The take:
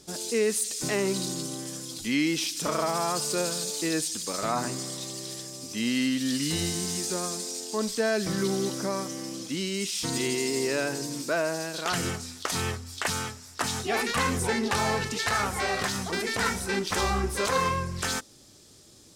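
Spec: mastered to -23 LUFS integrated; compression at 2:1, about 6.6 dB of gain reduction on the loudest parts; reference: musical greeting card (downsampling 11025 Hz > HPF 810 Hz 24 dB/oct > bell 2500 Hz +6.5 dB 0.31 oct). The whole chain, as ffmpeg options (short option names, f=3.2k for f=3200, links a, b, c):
-af "acompressor=threshold=-34dB:ratio=2,aresample=11025,aresample=44100,highpass=f=810:w=0.5412,highpass=f=810:w=1.3066,equalizer=f=2.5k:t=o:w=0.31:g=6.5,volume=13.5dB"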